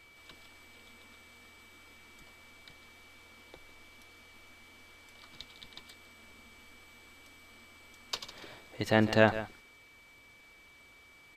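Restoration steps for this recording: notch 2300 Hz, Q 30; inverse comb 0.153 s -14 dB

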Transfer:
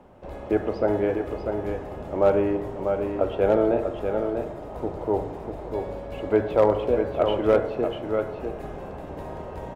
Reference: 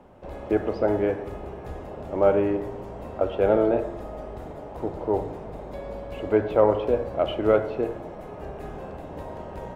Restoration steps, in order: clip repair -9.5 dBFS; inverse comb 0.643 s -6 dB

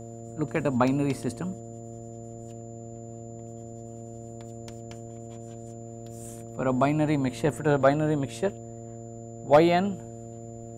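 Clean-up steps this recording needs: clip repair -9.5 dBFS; de-hum 115.2 Hz, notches 6; notch 7100 Hz, Q 30

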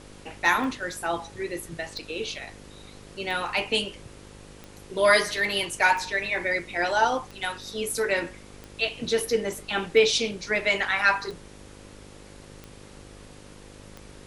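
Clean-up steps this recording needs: de-click; de-hum 50.8 Hz, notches 11; denoiser 25 dB, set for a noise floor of -47 dBFS

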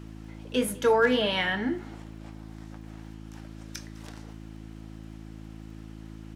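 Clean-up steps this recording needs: clip repair -13 dBFS; de-click; de-hum 54.1 Hz, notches 6; inverse comb 0.205 s -23 dB

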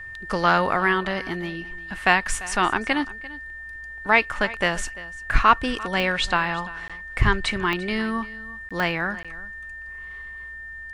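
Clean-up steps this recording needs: de-click; notch 1800 Hz, Q 30; interpolate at 6.88/8.69/9.23, 16 ms; inverse comb 0.344 s -18.5 dB

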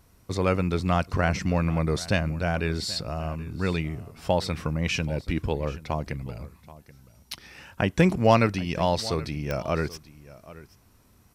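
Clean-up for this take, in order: de-click; expander -48 dBFS, range -21 dB; inverse comb 0.78 s -18.5 dB

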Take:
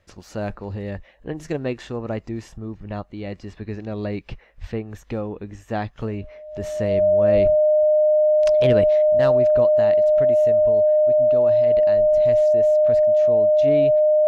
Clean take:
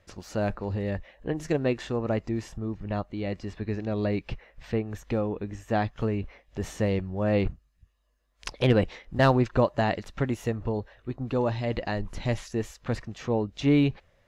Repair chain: notch 610 Hz, Q 30; de-plosive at 4.6/7.34; gain correction +5 dB, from 9.02

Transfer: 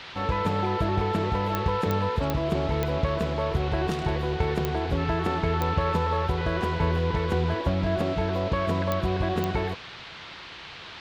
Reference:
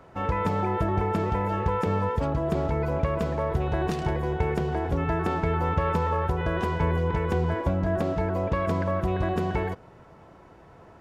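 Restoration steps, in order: de-click; noise print and reduce 8 dB

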